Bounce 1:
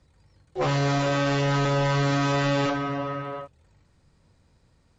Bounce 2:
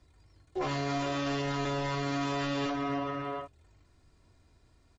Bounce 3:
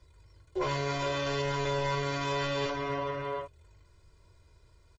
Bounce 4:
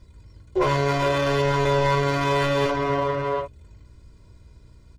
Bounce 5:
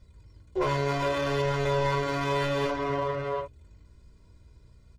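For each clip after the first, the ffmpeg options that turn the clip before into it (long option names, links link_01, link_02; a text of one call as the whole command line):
ffmpeg -i in.wav -af "aecho=1:1:2.9:0.55,alimiter=limit=-22.5dB:level=0:latency=1,volume=-2.5dB" out.wav
ffmpeg -i in.wav -af "aecho=1:1:2:0.72" out.wav
ffmpeg -i in.wav -filter_complex "[0:a]aeval=exprs='val(0)+0.000708*(sin(2*PI*60*n/s)+sin(2*PI*2*60*n/s)/2+sin(2*PI*3*60*n/s)/3+sin(2*PI*4*60*n/s)/4+sin(2*PI*5*60*n/s)/5)':channel_layout=same,asplit=2[link_01][link_02];[link_02]adynamicsmooth=sensitivity=7.5:basefreq=560,volume=-1.5dB[link_03];[link_01][link_03]amix=inputs=2:normalize=0,volume=5dB" out.wav
ffmpeg -i in.wav -af "flanger=delay=1.5:depth=3.4:regen=-67:speed=0.62:shape=sinusoidal,volume=-1.5dB" out.wav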